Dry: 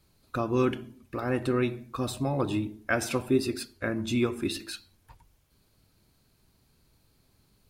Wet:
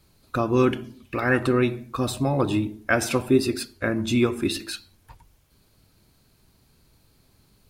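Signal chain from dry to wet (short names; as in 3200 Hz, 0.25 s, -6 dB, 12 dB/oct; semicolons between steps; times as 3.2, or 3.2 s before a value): 0.83–1.47 bell 5800 Hz -> 1100 Hz +12.5 dB 0.63 oct; gain +5.5 dB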